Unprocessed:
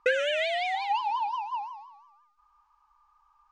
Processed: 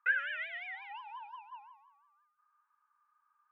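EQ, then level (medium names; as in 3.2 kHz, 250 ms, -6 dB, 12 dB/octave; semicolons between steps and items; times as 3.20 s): Savitzky-Golay filter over 25 samples; ladder high-pass 1.4 kHz, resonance 70%; treble shelf 2.1 kHz -11 dB; +3.5 dB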